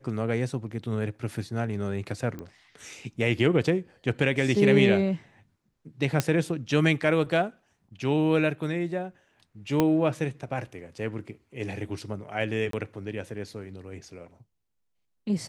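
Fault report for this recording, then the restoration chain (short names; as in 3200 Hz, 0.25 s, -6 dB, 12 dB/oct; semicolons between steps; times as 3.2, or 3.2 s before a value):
2.39 pop -25 dBFS
6.2 pop -8 dBFS
9.8 pop -9 dBFS
12.71–12.73 gap 23 ms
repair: de-click; interpolate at 12.71, 23 ms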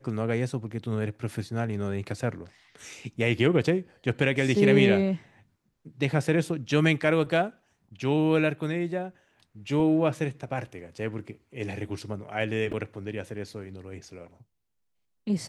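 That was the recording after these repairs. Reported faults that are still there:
6.2 pop
9.8 pop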